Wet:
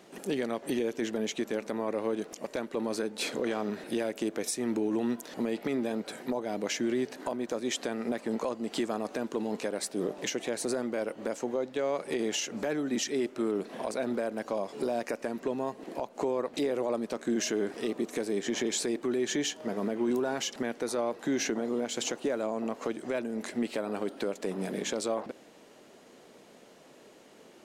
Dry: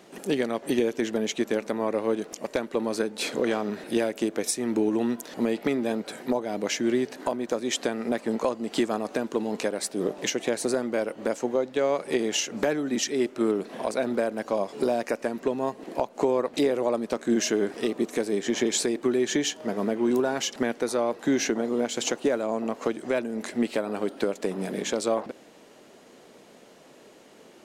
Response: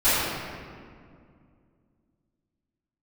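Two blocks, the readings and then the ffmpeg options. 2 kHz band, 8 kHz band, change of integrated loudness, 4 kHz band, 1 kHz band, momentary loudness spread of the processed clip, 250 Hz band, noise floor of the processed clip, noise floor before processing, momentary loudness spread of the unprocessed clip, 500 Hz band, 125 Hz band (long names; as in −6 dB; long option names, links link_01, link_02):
−5.0 dB, −4.5 dB, −5.0 dB, −4.5 dB, −5.5 dB, 5 LU, −5.0 dB, −55 dBFS, −52 dBFS, 5 LU, −5.5 dB, −4.5 dB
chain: -af "alimiter=limit=-18.5dB:level=0:latency=1:release=35,volume=-3dB"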